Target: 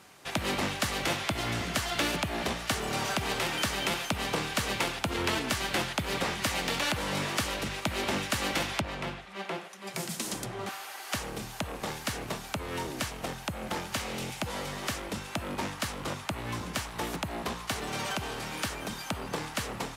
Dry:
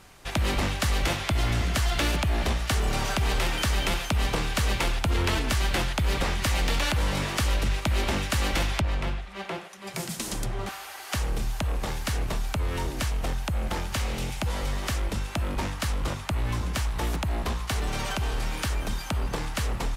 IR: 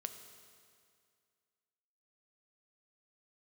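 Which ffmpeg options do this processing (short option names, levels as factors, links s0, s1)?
-af "highpass=150,volume=0.841"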